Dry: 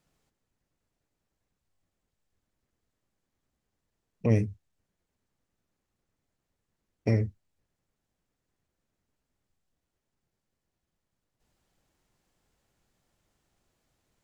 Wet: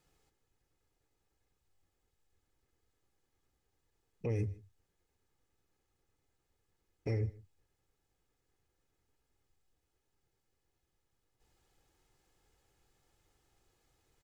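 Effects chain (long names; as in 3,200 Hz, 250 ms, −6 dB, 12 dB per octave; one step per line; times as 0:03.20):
comb filter 2.4 ms, depth 51%
brickwall limiter −27 dBFS, peak gain reduction 13.5 dB
on a send: single-tap delay 155 ms −22 dB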